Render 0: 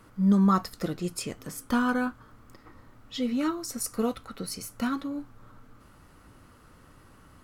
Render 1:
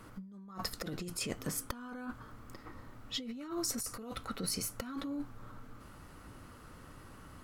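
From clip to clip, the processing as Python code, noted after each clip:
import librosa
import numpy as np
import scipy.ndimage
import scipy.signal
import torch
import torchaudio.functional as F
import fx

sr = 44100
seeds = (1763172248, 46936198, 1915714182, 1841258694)

y = fx.over_compress(x, sr, threshold_db=-36.0, ratio=-1.0)
y = y * 10.0 ** (-5.0 / 20.0)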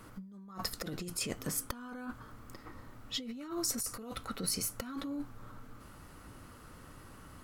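y = fx.high_shelf(x, sr, hz=6600.0, db=4.0)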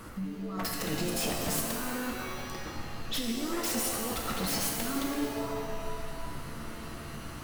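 y = 10.0 ** (-35.0 / 20.0) * (np.abs((x / 10.0 ** (-35.0 / 20.0) + 3.0) % 4.0 - 2.0) - 1.0)
y = fx.rev_shimmer(y, sr, seeds[0], rt60_s=1.7, semitones=7, shimmer_db=-2, drr_db=1.5)
y = y * 10.0 ** (6.5 / 20.0)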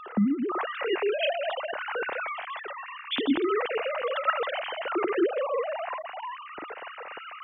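y = fx.sine_speech(x, sr)
y = y * 10.0 ** (4.0 / 20.0)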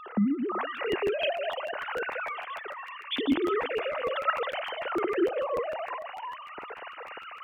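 y = fx.echo_thinned(x, sr, ms=347, feedback_pct=31, hz=370.0, wet_db=-19.0)
y = fx.buffer_crackle(y, sr, first_s=0.76, period_s=0.15, block=512, kind='repeat')
y = y * 10.0 ** (-1.5 / 20.0)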